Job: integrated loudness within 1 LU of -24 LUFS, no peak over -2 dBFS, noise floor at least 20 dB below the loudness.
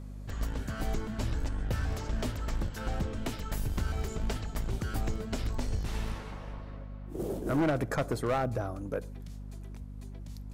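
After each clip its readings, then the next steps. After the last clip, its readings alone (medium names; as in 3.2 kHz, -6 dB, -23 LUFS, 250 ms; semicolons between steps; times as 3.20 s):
clipped samples 1.0%; clipping level -23.5 dBFS; hum 50 Hz; highest harmonic 250 Hz; hum level -40 dBFS; loudness -35.0 LUFS; peak level -23.5 dBFS; loudness target -24.0 LUFS
-> clip repair -23.5 dBFS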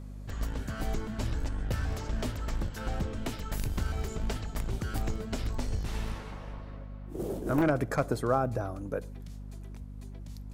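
clipped samples 0.0%; hum 50 Hz; highest harmonic 250 Hz; hum level -40 dBFS
-> de-hum 50 Hz, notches 5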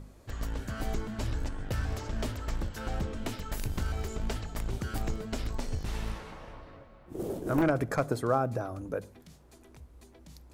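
hum not found; loudness -34.0 LUFS; peak level -14.0 dBFS; loudness target -24.0 LUFS
-> trim +10 dB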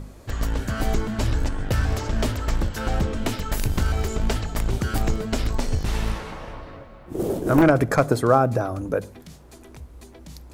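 loudness -24.0 LUFS; peak level -4.0 dBFS; noise floor -45 dBFS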